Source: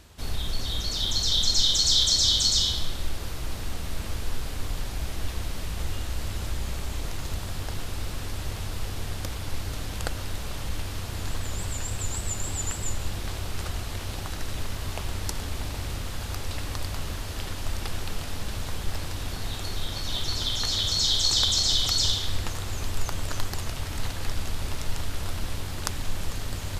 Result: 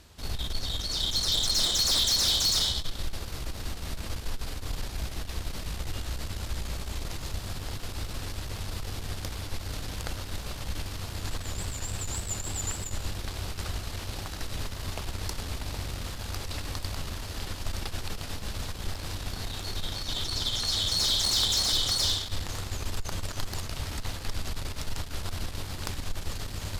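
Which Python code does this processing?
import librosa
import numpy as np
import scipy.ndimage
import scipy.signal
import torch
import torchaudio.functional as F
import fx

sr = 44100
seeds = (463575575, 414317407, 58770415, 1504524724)

y = fx.peak_eq(x, sr, hz=4600.0, db=3.0, octaves=0.61)
y = fx.tube_stage(y, sr, drive_db=20.0, bias=0.55)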